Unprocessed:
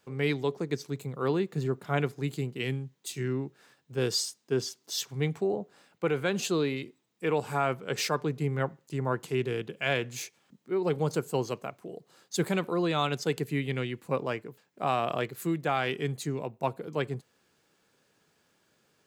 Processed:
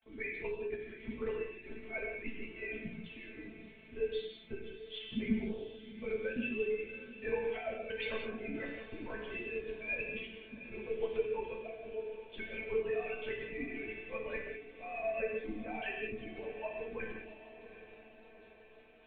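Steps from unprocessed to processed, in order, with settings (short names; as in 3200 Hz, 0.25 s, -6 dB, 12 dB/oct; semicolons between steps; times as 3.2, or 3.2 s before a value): sine-wave speech; band shelf 780 Hz -13.5 dB; notch 1900 Hz, Q 16; compressor 2.5:1, threshold -36 dBFS, peak gain reduction 11 dB; fixed phaser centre 350 Hz, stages 6; crackle 79/s -50 dBFS; flange 0.19 Hz, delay 5.2 ms, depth 7.3 ms, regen +30%; LPC vocoder at 8 kHz whisper; resonator 220 Hz, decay 0.16 s, harmonics all, mix 90%; diffused feedback echo 0.752 s, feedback 58%, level -13.5 dB; non-linear reverb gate 0.23 s flat, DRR 1 dB; gain +17.5 dB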